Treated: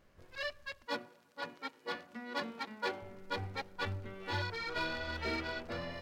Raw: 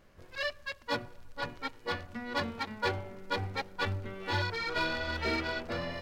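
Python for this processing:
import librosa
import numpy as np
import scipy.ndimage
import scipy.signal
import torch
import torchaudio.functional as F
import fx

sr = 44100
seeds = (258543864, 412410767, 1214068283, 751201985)

y = fx.highpass(x, sr, hz=180.0, slope=24, at=(0.86, 3.02))
y = F.gain(torch.from_numpy(y), -5.0).numpy()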